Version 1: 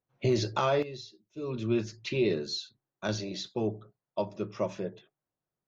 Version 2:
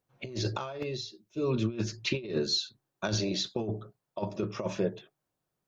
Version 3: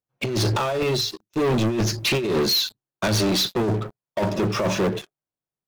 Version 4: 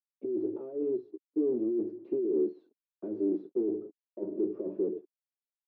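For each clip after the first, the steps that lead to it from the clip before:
notch filter 2,000 Hz, Q 25; compressor whose output falls as the input rises −32 dBFS, ratio −0.5; level +2.5 dB
leveller curve on the samples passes 5; level −1.5 dB
bit reduction 7 bits; flat-topped band-pass 340 Hz, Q 2.4; level −3.5 dB

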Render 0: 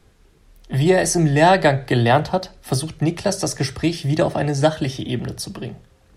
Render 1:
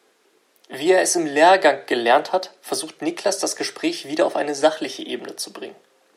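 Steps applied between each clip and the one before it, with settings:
high-pass filter 320 Hz 24 dB per octave
level +1 dB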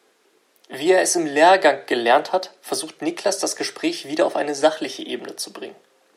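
no processing that can be heard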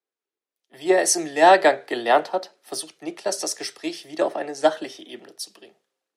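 multiband upward and downward expander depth 70%
level −4.5 dB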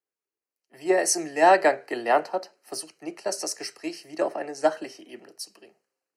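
Butterworth band-reject 3,500 Hz, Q 3.3
level −3.5 dB

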